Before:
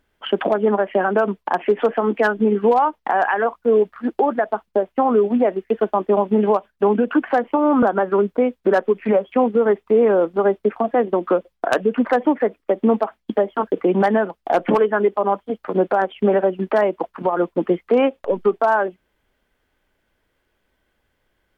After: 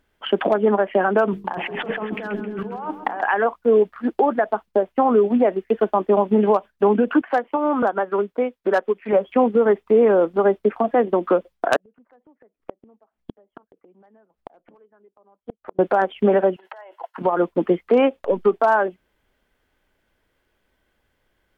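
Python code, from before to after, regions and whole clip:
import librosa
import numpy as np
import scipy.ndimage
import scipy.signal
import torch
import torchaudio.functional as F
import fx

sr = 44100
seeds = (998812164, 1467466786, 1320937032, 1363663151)

y = fx.chain(x, sr, fx.over_compress(threshold_db=-28.0, ratio=-1.0),
    fx.hum_notches(base_hz=50, count=9),
    fx.echo_feedback(ms=133, feedback_pct=54, wet_db=-11.0), at=(1.31, 3.23))
y = fx.chain(y, sr, fx.low_shelf(hz=250.0, db=-10.0),
    fx.upward_expand(threshold_db=-28.0, expansion=1.5), at=(7.21, 9.13))
y = fx.chain(y, sr, fx.high_shelf(hz=2000.0, db=-9.5),
    fx.gate_flip(shuts_db=-17.0, range_db=-37), at=(11.76, 15.79))
y = fx.chain(y, sr, fx.over_compress(threshold_db=-27.0, ratio=-1.0),
    fx.ladder_highpass(hz=670.0, resonance_pct=30),
    fx.notch_comb(f0_hz=1200.0), at=(16.56, 17.18))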